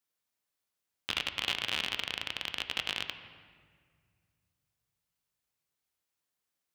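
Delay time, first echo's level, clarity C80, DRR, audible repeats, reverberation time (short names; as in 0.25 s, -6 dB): none, none, 10.5 dB, 7.5 dB, none, 1.9 s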